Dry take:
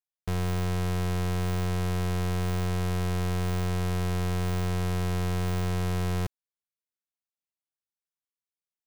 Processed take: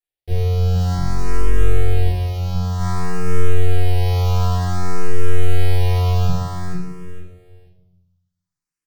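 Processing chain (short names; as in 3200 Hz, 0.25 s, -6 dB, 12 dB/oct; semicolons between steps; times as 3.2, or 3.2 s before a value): 0.94–1.53 octaver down 1 oct, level +1 dB; 2.06–2.77 HPF 110 Hz -> 40 Hz 24 dB/oct; limiter -25.5 dBFS, peak gain reduction 7.5 dB; rotary speaker horn 0.65 Hz; feedback echo 0.458 s, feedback 22%, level -3.5 dB; reverb RT60 0.85 s, pre-delay 4 ms, DRR -9 dB; endless phaser +0.54 Hz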